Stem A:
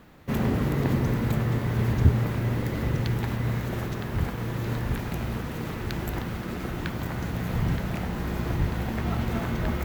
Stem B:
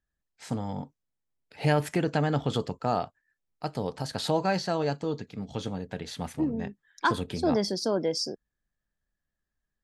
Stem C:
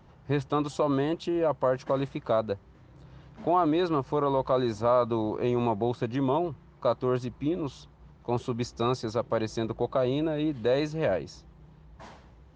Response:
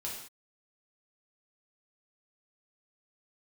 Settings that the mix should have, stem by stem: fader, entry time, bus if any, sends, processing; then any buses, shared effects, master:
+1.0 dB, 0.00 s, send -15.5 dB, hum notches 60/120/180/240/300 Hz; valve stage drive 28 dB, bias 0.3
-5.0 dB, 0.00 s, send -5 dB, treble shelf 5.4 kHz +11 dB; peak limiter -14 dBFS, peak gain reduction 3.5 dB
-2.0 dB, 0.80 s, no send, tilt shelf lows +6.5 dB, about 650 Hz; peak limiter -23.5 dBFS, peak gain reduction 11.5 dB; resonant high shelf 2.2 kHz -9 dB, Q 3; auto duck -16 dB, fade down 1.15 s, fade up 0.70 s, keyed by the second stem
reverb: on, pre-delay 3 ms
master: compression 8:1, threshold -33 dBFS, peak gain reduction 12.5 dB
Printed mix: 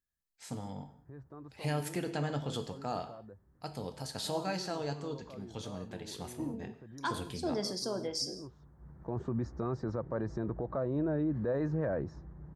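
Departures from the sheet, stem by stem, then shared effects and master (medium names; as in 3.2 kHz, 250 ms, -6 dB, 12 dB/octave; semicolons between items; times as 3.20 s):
stem A: muted; stem B -5.0 dB -> -12.0 dB; master: missing compression 8:1, threshold -33 dBFS, peak gain reduction 12.5 dB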